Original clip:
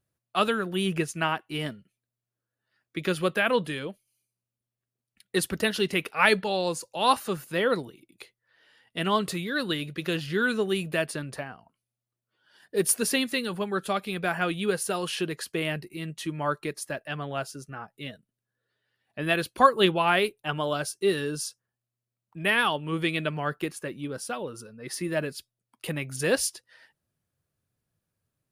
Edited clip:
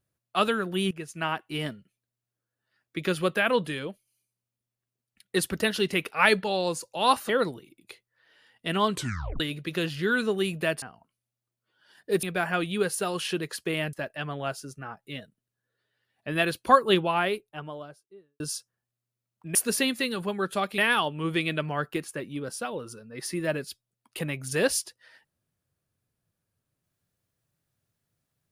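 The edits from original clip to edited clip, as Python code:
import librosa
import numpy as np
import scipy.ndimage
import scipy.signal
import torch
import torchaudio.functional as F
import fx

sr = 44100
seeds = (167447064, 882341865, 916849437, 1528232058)

y = fx.studio_fade_out(x, sr, start_s=19.61, length_s=1.7)
y = fx.edit(y, sr, fx.fade_in_from(start_s=0.91, length_s=0.51, floor_db=-17.5),
    fx.cut(start_s=7.29, length_s=0.31),
    fx.tape_stop(start_s=9.24, length_s=0.47),
    fx.cut(start_s=11.13, length_s=0.34),
    fx.move(start_s=12.88, length_s=1.23, to_s=22.46),
    fx.cut(start_s=15.81, length_s=1.03), tone=tone)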